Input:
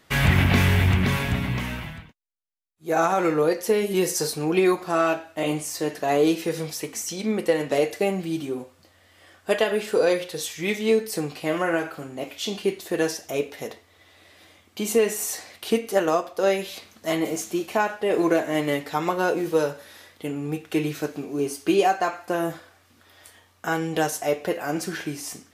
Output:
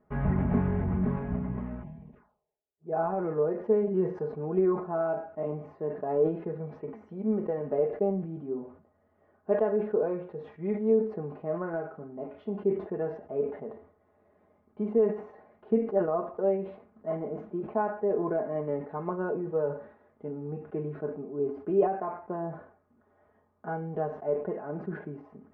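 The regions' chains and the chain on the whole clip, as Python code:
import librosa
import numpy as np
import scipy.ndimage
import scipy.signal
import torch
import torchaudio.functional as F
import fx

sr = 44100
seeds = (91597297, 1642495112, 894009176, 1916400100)

y = fx.chain(x, sr, fx.highpass(hz=68.0, slope=12),
    fx.env_phaser(low_hz=190.0, high_hz=1400.0, full_db=-40.5),
    fx.sustainer(db_per_s=54.0), at=(1.82, 2.93))
y = scipy.signal.sosfilt(scipy.signal.bessel(4, 780.0, 'lowpass', norm='mag', fs=sr, output='sos'), y)
y = y + 0.66 * np.pad(y, (int(4.8 * sr / 1000.0), 0))[:len(y)]
y = fx.sustainer(y, sr, db_per_s=110.0)
y = F.gain(torch.from_numpy(y), -6.5).numpy()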